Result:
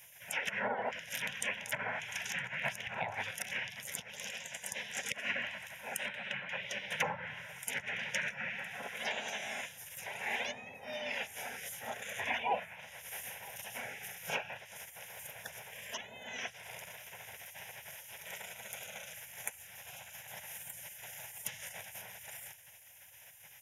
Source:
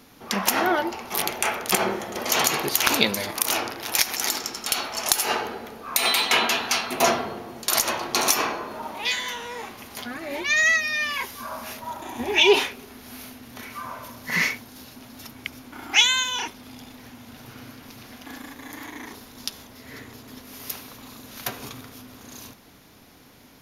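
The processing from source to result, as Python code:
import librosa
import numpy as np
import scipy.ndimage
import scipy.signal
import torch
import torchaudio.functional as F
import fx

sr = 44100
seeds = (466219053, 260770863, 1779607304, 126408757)

p1 = fx.env_lowpass_down(x, sr, base_hz=620.0, full_db=-17.0)
p2 = scipy.signal.sosfilt(scipy.signal.butter(2, 250.0, 'highpass', fs=sr, output='sos'), p1)
p3 = fx.spec_gate(p2, sr, threshold_db=-15, keep='weak')
p4 = fx.fixed_phaser(p3, sr, hz=1200.0, stages=6)
p5 = p4 + fx.echo_single(p4, sr, ms=963, db=-21.5, dry=0)
y = p5 * 10.0 ** (5.5 / 20.0)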